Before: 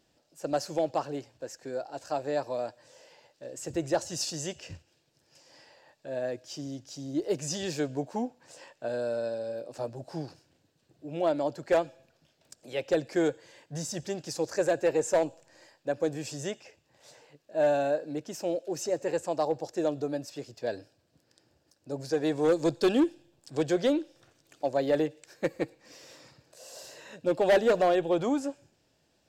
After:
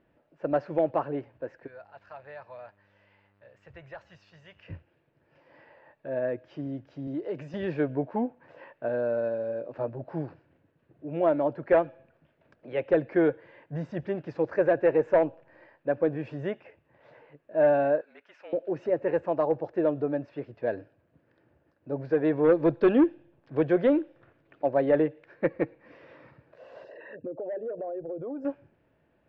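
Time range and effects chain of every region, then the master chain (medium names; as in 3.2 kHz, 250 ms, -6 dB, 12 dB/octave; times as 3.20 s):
1.66–4.67 s: amplifier tone stack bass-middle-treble 10-0-10 + compression 2.5:1, threshold -41 dBFS + mains buzz 100 Hz, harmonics 32, -72 dBFS -5 dB/octave
7.07–7.54 s: high-pass 110 Hz + treble shelf 3.8 kHz +11 dB + compression 3:1, threshold -34 dBFS
18.01–18.53 s: frequency shift -40 Hz + high-pass 1.4 kHz
26.84–28.45 s: resonances exaggerated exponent 2 + compression 5:1, threshold -37 dBFS
whole clip: low-pass 2.2 kHz 24 dB/octave; band-stop 770 Hz, Q 12; trim +3.5 dB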